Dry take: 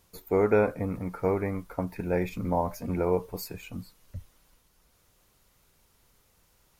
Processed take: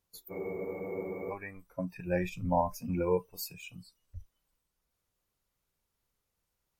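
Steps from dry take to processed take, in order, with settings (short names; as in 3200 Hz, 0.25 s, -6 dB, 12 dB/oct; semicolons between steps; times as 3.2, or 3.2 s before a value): spectral noise reduction 18 dB; spectral freeze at 0.33, 0.98 s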